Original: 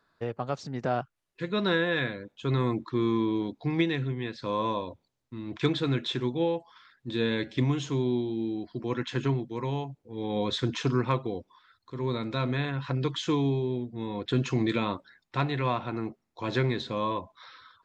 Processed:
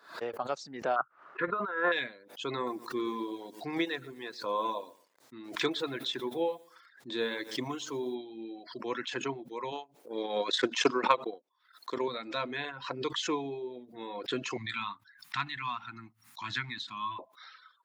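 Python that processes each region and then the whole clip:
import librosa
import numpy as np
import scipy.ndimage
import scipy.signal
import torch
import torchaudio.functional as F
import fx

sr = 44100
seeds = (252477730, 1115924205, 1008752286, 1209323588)

y = fx.chain(x, sr, fx.lowpass_res(hz=1300.0, q=5.8),
    fx.over_compress(threshold_db=-26.0, ratio=-0.5), at=(0.96, 1.92))
y = fx.chain(y, sr, fx.peak_eq(hz=2700.0, db=-4.5, octaves=0.63),
    fx.echo_crushed(ms=118, feedback_pct=35, bits=8, wet_db=-13.5), at=(2.55, 8.15))
y = fx.chain(y, sr, fx.transient(attack_db=10, sustain_db=-9),
    fx.highpass(hz=200.0, slope=12),
    fx.high_shelf(hz=5800.0, db=3.5), at=(9.72, 12.08))
y = fx.chain(y, sr, fx.cheby1_bandstop(low_hz=200.0, high_hz=1200.0, order=2),
    fx.peak_eq(hz=110.0, db=14.0, octaves=0.28), at=(14.57, 17.19))
y = scipy.signal.sosfilt(scipy.signal.butter(2, 410.0, 'highpass', fs=sr, output='sos'), y)
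y = fx.dereverb_blind(y, sr, rt60_s=1.3)
y = fx.pre_swell(y, sr, db_per_s=130.0)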